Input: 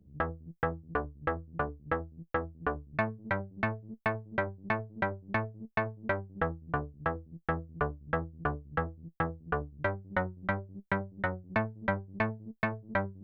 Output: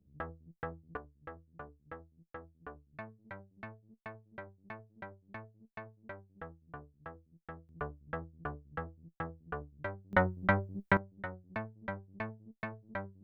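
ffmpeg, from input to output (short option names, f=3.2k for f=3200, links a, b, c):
-af "asetnsamples=n=441:p=0,asendcmd='0.97 volume volume -16dB;7.69 volume volume -8.5dB;10.13 volume volume 3.5dB;10.97 volume volume -9.5dB',volume=-9.5dB"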